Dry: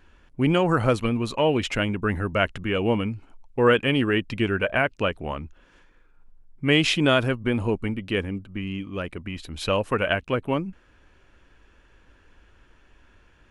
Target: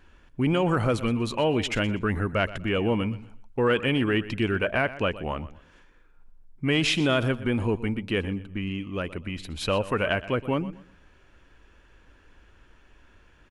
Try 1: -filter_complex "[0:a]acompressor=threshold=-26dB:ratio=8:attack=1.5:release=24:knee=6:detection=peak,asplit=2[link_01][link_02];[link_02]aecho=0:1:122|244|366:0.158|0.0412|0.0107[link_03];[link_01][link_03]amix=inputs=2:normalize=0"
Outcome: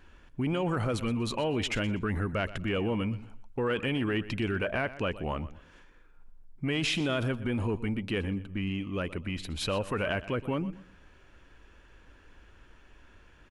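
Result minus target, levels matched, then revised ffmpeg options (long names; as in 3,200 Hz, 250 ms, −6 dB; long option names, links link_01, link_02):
downward compressor: peak gain reduction +7.5 dB
-filter_complex "[0:a]acompressor=threshold=-17.5dB:ratio=8:attack=1.5:release=24:knee=6:detection=peak,asplit=2[link_01][link_02];[link_02]aecho=0:1:122|244|366:0.158|0.0412|0.0107[link_03];[link_01][link_03]amix=inputs=2:normalize=0"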